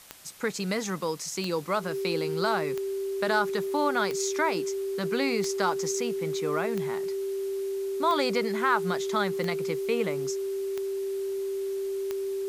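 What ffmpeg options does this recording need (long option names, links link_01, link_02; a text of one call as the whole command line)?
ffmpeg -i in.wav -af "adeclick=threshold=4,bandreject=frequency=390:width=30,afwtdn=0.0032" out.wav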